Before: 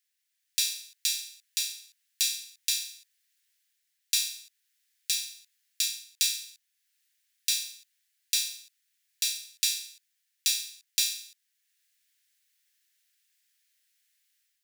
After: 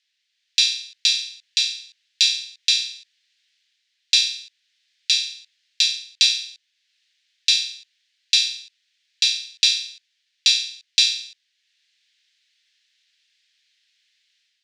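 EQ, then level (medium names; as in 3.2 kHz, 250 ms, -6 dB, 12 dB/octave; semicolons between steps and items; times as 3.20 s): high-pass 1.4 kHz 12 dB/octave; distance through air 130 m; peaking EQ 3.8 kHz +12.5 dB 2 oct; +5.0 dB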